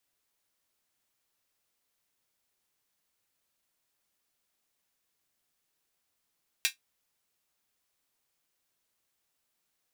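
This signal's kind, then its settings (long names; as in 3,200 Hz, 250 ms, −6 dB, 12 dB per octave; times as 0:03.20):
closed synth hi-hat, high-pass 2,300 Hz, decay 0.13 s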